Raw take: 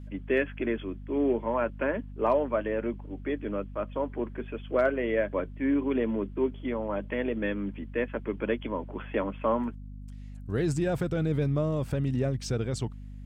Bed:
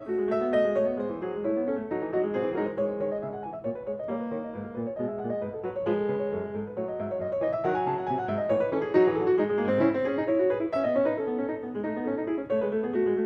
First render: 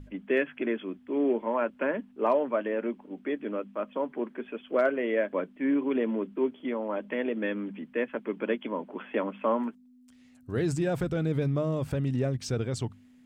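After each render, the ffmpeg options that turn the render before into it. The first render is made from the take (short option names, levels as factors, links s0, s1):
-af "bandreject=f=50:t=h:w=6,bandreject=f=100:t=h:w=6,bandreject=f=150:t=h:w=6,bandreject=f=200:t=h:w=6"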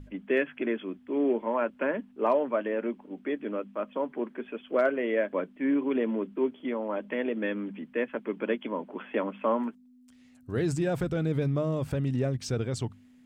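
-af anull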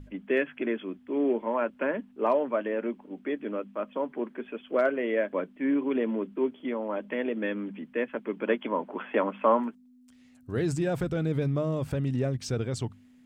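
-filter_complex "[0:a]asettb=1/sr,asplit=3[s0][s1][s2];[s0]atrim=end=8.474[s3];[s1]atrim=start=8.47:end=9.6,asetpts=PTS-STARTPTS,afade=t=in:d=0.004:c=qsin,afade=t=out:st=1.126:d=0.004:c=qsin,equalizer=f=1000:w=0.58:g=6[s4];[s2]atrim=start=9.596[s5];[s3][s4]acrossfade=d=0.004:c1=hsin:c2=qsin[s6];[s6][s5]acrossfade=d=0.004:c1=qsin:c2=hsin"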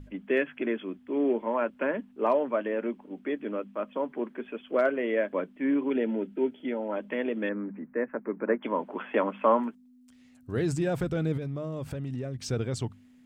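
-filter_complex "[0:a]asettb=1/sr,asplit=3[s0][s1][s2];[s0]atrim=end=5.904[s3];[s1]atrim=start=5.9:end=6.92,asetpts=PTS-STARTPTS,afade=t=in:d=0.004:c=qsin,afade=t=out:st=1.016:d=0.004:c=qsin,asuperstop=centerf=1100:order=8:qfactor=4.1[s4];[s2]atrim=start=6.916[s5];[s3][s4]acrossfade=d=0.004:c1=hsin:c2=qsin[s6];[s6][s5]acrossfade=d=0.004:c1=qsin:c2=hsin,asettb=1/sr,asplit=3[s7][s8][s9];[s7]atrim=end=7.494[s10];[s8]atrim=start=7.49:end=8.63,asetpts=PTS-STARTPTS,afade=t=in:d=0.004:c=qsin,afade=t=out:st=1.136:d=0.004:c=qsin,asuperstop=centerf=5000:order=8:qfactor=0.54[s11];[s9]atrim=start=8.626[s12];[s10][s11]acrossfade=d=0.004:c1=hsin:c2=qsin[s13];[s13][s12]acrossfade=d=0.004:c1=qsin:c2=hsin,asettb=1/sr,asplit=3[s14][s15][s16];[s14]atrim=end=11.374[s17];[s15]atrim=start=11.37:end=12.43,asetpts=PTS-STARTPTS,afade=t=in:d=0.004:c=qsin,afade=t=out:st=1.056:d=0.004:c=qsin,acompressor=threshold=0.0282:ratio=4:attack=3.2:release=140:knee=1:detection=peak[s18];[s16]atrim=start=12.426[s19];[s17][s18]acrossfade=d=0.004:c1=hsin:c2=qsin[s20];[s20][s19]acrossfade=d=0.004:c1=qsin:c2=hsin"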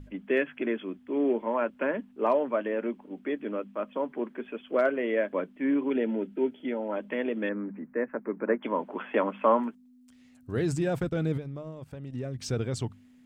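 -filter_complex "[0:a]asplit=3[s0][s1][s2];[s0]afade=t=out:st=10.98:d=0.02[s3];[s1]agate=range=0.2:threshold=0.02:ratio=16:release=100:detection=peak,afade=t=in:st=10.98:d=0.02,afade=t=out:st=12.14:d=0.02[s4];[s2]afade=t=in:st=12.14:d=0.02[s5];[s3][s4][s5]amix=inputs=3:normalize=0"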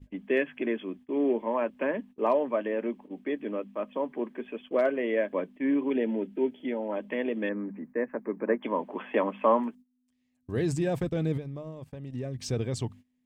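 -af "agate=range=0.126:threshold=0.00501:ratio=16:detection=peak,bandreject=f=1400:w=5.1"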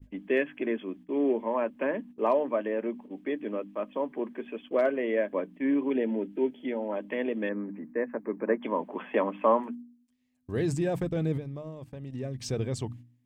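-af "bandreject=f=60.11:t=h:w=4,bandreject=f=120.22:t=h:w=4,bandreject=f=180.33:t=h:w=4,bandreject=f=240.44:t=h:w=4,bandreject=f=300.55:t=h:w=4,adynamicequalizer=threshold=0.00398:dfrequency=4100:dqfactor=0.71:tfrequency=4100:tqfactor=0.71:attack=5:release=100:ratio=0.375:range=2.5:mode=cutabove:tftype=bell"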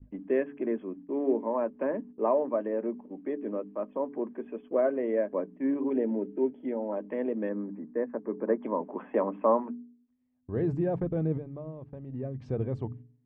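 -af "lowpass=1100,bandreject=f=141.9:t=h:w=4,bandreject=f=283.8:t=h:w=4,bandreject=f=425.7:t=h:w=4"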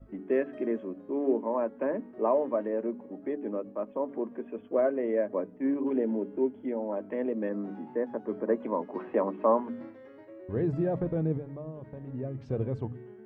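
-filter_complex "[1:a]volume=0.0708[s0];[0:a][s0]amix=inputs=2:normalize=0"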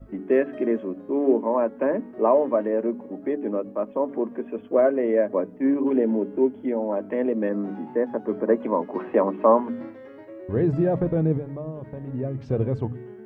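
-af "volume=2.24"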